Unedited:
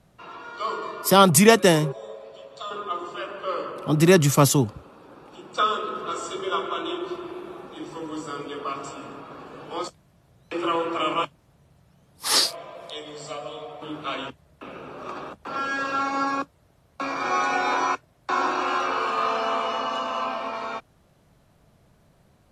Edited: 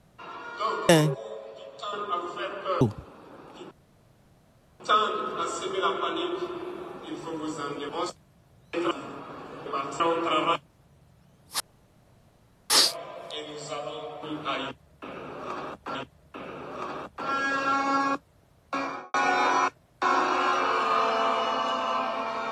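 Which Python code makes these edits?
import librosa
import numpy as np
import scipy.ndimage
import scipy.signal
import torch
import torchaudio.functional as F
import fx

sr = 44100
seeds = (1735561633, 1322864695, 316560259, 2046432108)

y = fx.studio_fade_out(x, sr, start_s=17.02, length_s=0.39)
y = fx.edit(y, sr, fx.cut(start_s=0.89, length_s=0.78),
    fx.cut(start_s=3.59, length_s=1.0),
    fx.insert_room_tone(at_s=5.49, length_s=1.09),
    fx.swap(start_s=8.58, length_s=0.34, other_s=9.67, other_length_s=1.02),
    fx.insert_room_tone(at_s=12.29, length_s=1.1),
    fx.repeat(start_s=14.22, length_s=1.32, count=2), tone=tone)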